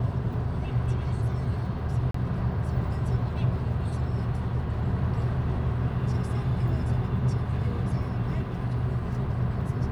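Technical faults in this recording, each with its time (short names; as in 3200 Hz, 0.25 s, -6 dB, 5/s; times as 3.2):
2.11–2.14 gap 34 ms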